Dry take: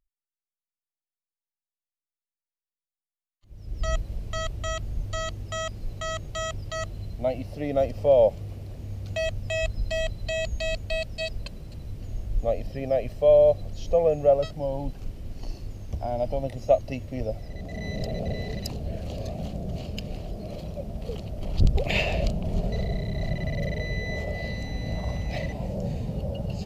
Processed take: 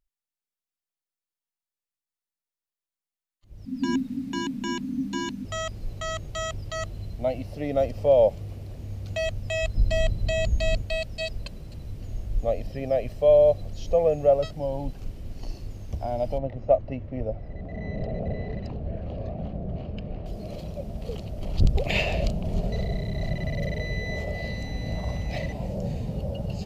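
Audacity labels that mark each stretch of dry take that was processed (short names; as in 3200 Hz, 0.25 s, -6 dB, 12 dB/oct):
3.650000	5.450000	frequency shift -300 Hz
9.750000	10.820000	low shelf 440 Hz +7.5 dB
16.380000	20.260000	LPF 1800 Hz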